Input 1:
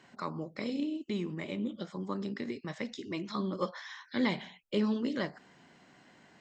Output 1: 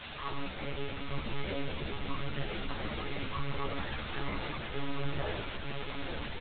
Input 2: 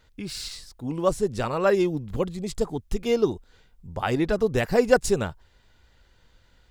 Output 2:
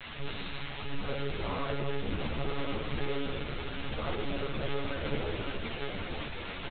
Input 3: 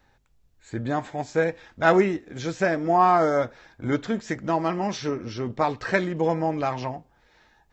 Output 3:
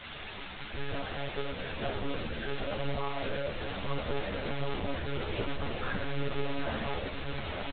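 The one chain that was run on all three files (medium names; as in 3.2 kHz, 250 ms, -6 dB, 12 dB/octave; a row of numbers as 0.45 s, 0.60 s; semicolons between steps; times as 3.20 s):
low-pass that closes with the level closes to 430 Hz, closed at -19 dBFS; comb 1.8 ms, depth 44%; de-hum 174.4 Hz, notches 3; compression 3:1, threshold -29 dBFS; saturation -33.5 dBFS; small resonant body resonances 1.1/1.6 kHz, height 7 dB; word length cut 6-bit, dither triangular; on a send: echo that smears into a reverb 903 ms, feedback 43%, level -4.5 dB; on the sum: simulated room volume 660 m³, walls mixed, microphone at 1.5 m; monotone LPC vocoder at 8 kHz 140 Hz; three-phase chorus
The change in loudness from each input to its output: -2.5 LU, -11.0 LU, -11.5 LU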